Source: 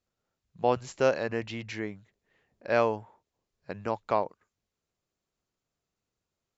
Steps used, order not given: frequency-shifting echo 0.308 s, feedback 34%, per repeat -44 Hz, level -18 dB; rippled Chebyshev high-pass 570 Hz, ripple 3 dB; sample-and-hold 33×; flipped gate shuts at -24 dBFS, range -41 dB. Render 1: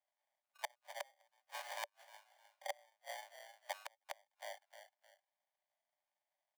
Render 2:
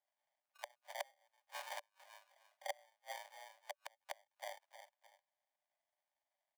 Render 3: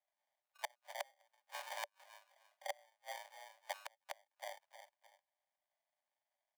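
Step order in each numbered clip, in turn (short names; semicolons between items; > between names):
sample-and-hold > frequency-shifting echo > flipped gate > rippled Chebyshev high-pass; frequency-shifting echo > flipped gate > sample-and-hold > rippled Chebyshev high-pass; frequency-shifting echo > sample-and-hold > flipped gate > rippled Chebyshev high-pass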